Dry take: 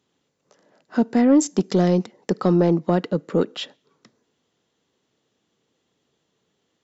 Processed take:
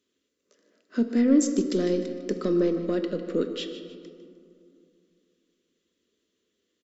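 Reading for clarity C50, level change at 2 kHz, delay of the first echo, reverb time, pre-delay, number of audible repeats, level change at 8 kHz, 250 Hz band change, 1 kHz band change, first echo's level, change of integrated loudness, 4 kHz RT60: 7.5 dB, -6.0 dB, 0.152 s, 2.5 s, 4 ms, 3, n/a, -4.5 dB, -14.5 dB, -14.0 dB, -5.0 dB, 1.2 s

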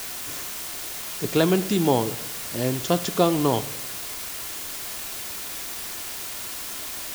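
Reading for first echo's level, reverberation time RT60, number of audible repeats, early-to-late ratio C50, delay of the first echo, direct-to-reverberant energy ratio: none, 0.95 s, none, 18.0 dB, none, 10.0 dB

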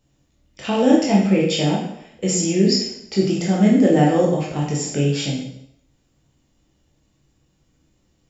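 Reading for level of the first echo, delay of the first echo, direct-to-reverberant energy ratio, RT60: none, none, -4.5 dB, 0.75 s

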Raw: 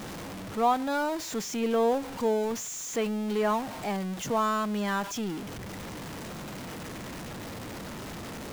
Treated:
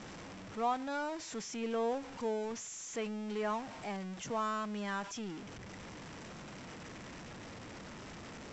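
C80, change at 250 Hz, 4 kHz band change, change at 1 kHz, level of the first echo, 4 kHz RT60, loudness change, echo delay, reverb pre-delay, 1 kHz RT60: none, -9.5 dB, -8.0 dB, -8.5 dB, none, none, -9.0 dB, none, none, none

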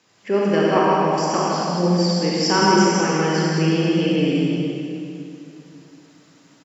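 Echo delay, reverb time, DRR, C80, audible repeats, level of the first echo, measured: 0.159 s, 2.7 s, -6.5 dB, -3.5 dB, 1, -6.0 dB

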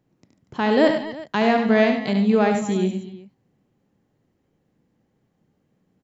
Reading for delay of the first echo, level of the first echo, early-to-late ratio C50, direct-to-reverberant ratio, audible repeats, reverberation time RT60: 71 ms, -7.0 dB, none, none, 4, none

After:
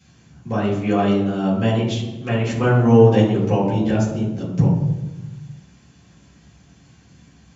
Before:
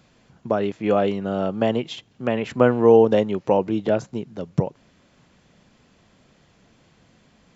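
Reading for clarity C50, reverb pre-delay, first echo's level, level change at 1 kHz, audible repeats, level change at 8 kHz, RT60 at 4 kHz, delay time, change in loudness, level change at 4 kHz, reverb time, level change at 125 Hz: 4.0 dB, 3 ms, none, +1.0 dB, none, n/a, 0.80 s, none, +2.5 dB, +3.5 dB, 1.2 s, +11.5 dB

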